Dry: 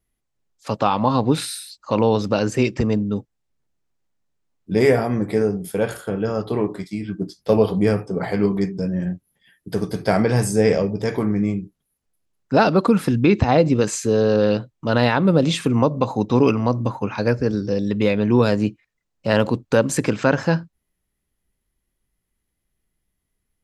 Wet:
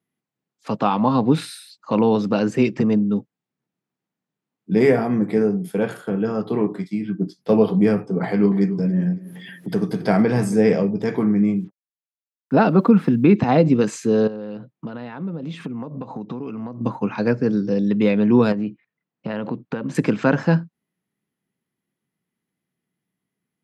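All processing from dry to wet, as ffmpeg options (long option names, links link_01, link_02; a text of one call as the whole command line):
ffmpeg -i in.wav -filter_complex "[0:a]asettb=1/sr,asplit=3[link_01][link_02][link_03];[link_01]atrim=end=8.244[link_04];[link_02]atrim=start=8.24:end=10.58,asetpts=PTS-STARTPTS,afade=type=in:duration=0.004:curve=qsin,afade=type=out:start_time=2.336:duration=0.004:curve=qsin,acompressor=mode=upward:threshold=-21dB:ratio=2.5:attack=3.2:release=140:knee=2.83:detection=peak,aecho=1:1:277|554|831:0.126|0.0428|0.0146,atrim=end_sample=103194[link_05];[link_03]atrim=start=10.576[link_06];[link_04][link_05]acrossfade=duration=0.004:curve1=hsin:curve2=qsin[link_07];[link_07][link_06]acrossfade=duration=0.004:curve1=qsin:curve2=hsin,asettb=1/sr,asplit=3[link_08][link_09][link_10];[link_08]atrim=end=11.564[link_11];[link_09]atrim=start=11.56:end=13.36,asetpts=PTS-STARTPTS,afade=type=in:duration=0.004:curve=qsin,afade=type=out:start_time=1.796:duration=0.004:curve=qsin,lowpass=frequency=2600:poles=1,acrusher=bits=8:mix=0:aa=0.5[link_12];[link_10]atrim=start=13.356[link_13];[link_11][link_12]acrossfade=duration=0.004:curve1=hsin:curve2=qsin[link_14];[link_14][link_13]acrossfade=duration=0.004:curve1=qsin:curve2=hsin,asettb=1/sr,asplit=3[link_15][link_16][link_17];[link_15]atrim=end=14.274[link_18];[link_16]atrim=start=14.27:end=16.81,asetpts=PTS-STARTPTS,afade=type=in:duration=0.004:curve=qsin,afade=type=out:start_time=2.536:duration=0.004:curve=qsin,acompressor=threshold=-27dB:ratio=10:attack=3.2:release=140:knee=1:detection=peak,lowpass=frequency=3000:poles=1[link_19];[link_17]atrim=start=16.806[link_20];[link_18][link_19]acrossfade=duration=0.004:curve1=hsin:curve2=qsin[link_21];[link_21][link_20]acrossfade=duration=0.004:curve1=qsin:curve2=hsin,asettb=1/sr,asplit=3[link_22][link_23][link_24];[link_22]atrim=end=18.524[link_25];[link_23]atrim=start=18.52:end=19.95,asetpts=PTS-STARTPTS,afade=type=in:duration=0.004:curve=qsin,afade=type=out:start_time=1.426:duration=0.004:curve=qsin,lowpass=3500,acompressor=threshold=-22dB:ratio=5:attack=3.2:release=140:knee=1:detection=peak[link_26];[link_24]atrim=start=19.946[link_27];[link_25][link_26]acrossfade=duration=0.004:curve1=hsin:curve2=qsin[link_28];[link_28][link_27]acrossfade=duration=0.004:curve1=qsin:curve2=hsin,highpass=frequency=160:width=0.5412,highpass=frequency=160:width=1.3066,bass=frequency=250:gain=8,treble=frequency=4000:gain=-8,bandreject=frequency=570:width=15,volume=-1dB" out.wav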